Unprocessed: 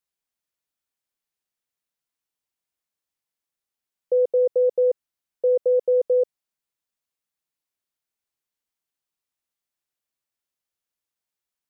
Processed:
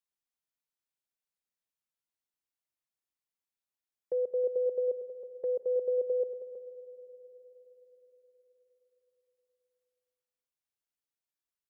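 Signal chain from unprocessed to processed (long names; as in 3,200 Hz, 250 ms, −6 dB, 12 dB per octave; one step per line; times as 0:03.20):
dynamic equaliser 570 Hz, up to −3 dB, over −32 dBFS, Q 1.3
single-tap delay 320 ms −10.5 dB
on a send at −14 dB: convolution reverb RT60 4.9 s, pre-delay 52 ms
on the sum: level −8.5 dB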